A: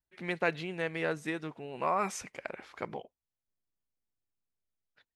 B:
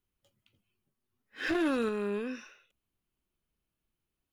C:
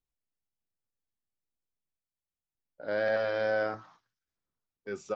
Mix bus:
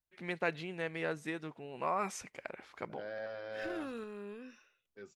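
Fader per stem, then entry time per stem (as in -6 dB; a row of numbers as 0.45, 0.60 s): -4.0, -12.5, -13.5 dB; 0.00, 2.15, 0.10 s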